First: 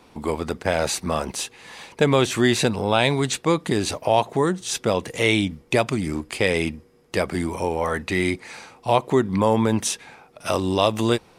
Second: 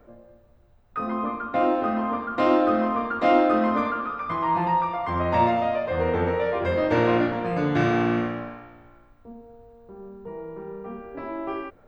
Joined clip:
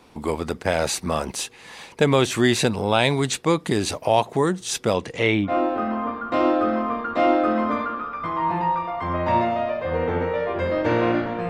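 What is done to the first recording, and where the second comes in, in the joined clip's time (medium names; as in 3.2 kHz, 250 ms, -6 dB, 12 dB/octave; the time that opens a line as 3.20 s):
first
4.95–5.53 s: low-pass 10 kHz -> 1.1 kHz
5.48 s: go over to second from 1.54 s, crossfade 0.10 s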